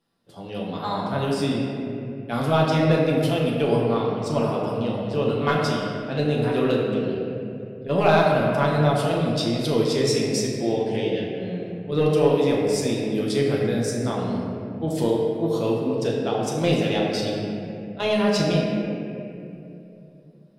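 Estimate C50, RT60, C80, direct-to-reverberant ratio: 0.0 dB, 2.9 s, 1.0 dB, -4.0 dB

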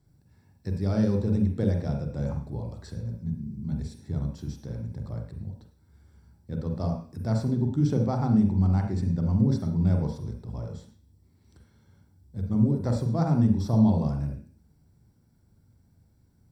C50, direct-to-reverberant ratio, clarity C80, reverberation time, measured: 5.5 dB, 2.5 dB, 10.0 dB, 0.45 s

